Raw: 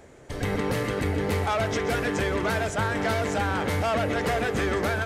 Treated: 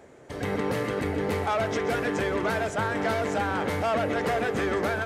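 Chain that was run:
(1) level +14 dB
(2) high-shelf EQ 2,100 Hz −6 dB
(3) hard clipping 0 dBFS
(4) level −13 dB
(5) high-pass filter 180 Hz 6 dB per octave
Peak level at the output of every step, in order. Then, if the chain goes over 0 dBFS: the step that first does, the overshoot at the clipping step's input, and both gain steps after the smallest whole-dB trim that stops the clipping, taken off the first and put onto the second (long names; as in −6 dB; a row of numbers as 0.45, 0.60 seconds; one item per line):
−3.0, −3.0, −3.0, −16.0, −16.0 dBFS
no step passes full scale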